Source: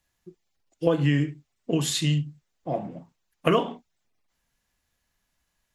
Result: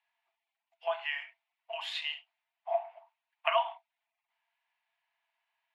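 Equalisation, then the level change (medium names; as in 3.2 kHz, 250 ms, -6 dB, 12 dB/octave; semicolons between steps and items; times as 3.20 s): rippled Chebyshev high-pass 650 Hz, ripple 9 dB; distance through air 400 m; treble shelf 7.6 kHz +7 dB; +5.5 dB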